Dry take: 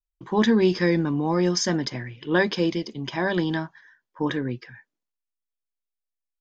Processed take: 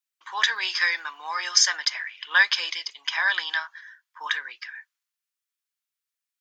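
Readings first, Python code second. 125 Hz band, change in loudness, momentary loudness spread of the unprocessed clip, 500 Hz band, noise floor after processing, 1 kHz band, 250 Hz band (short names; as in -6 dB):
under -40 dB, +0.5 dB, 12 LU, -24.0 dB, under -85 dBFS, -0.5 dB, under -35 dB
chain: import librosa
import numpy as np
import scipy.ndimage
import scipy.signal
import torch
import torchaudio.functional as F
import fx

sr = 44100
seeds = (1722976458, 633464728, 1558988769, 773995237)

y = scipy.signal.sosfilt(scipy.signal.butter(4, 1200.0, 'highpass', fs=sr, output='sos'), x)
y = y * librosa.db_to_amplitude(8.0)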